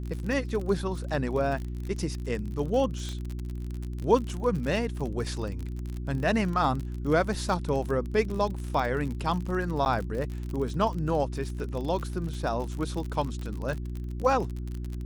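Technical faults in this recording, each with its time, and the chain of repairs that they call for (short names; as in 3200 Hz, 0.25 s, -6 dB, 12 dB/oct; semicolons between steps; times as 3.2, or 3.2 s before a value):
crackle 45/s -32 dBFS
hum 60 Hz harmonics 6 -34 dBFS
3.09 pop -23 dBFS
9.85–9.86 gap 9.7 ms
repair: de-click; de-hum 60 Hz, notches 6; interpolate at 9.85, 9.7 ms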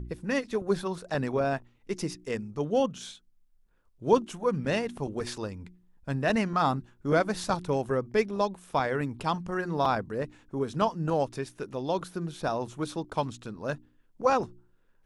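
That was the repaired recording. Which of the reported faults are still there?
none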